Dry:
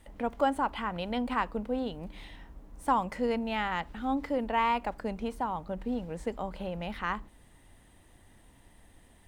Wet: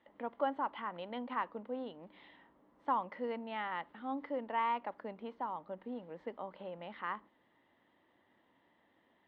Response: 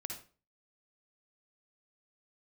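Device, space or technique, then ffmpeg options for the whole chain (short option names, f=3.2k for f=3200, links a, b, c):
phone earpiece: -af "highpass=340,equalizer=f=440:t=q:w=4:g=-4,equalizer=f=730:t=q:w=4:g=-5,equalizer=f=1.5k:t=q:w=4:g=-5,equalizer=f=2.5k:t=q:w=4:g=-9,lowpass=f=3k:w=0.5412,lowpass=f=3k:w=1.3066,volume=-4dB"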